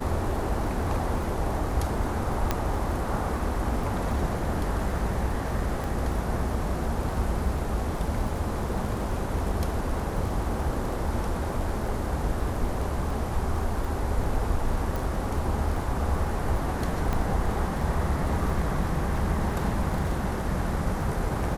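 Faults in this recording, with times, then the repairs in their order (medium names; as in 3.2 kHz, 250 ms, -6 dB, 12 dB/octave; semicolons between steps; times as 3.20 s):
crackle 25 per s -33 dBFS
2.51 s: pop -10 dBFS
5.84 s: pop
14.96 s: pop
17.13 s: pop -15 dBFS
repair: de-click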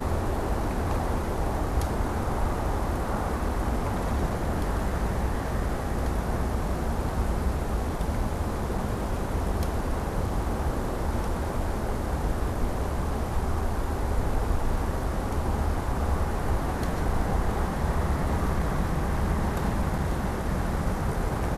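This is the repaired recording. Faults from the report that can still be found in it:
nothing left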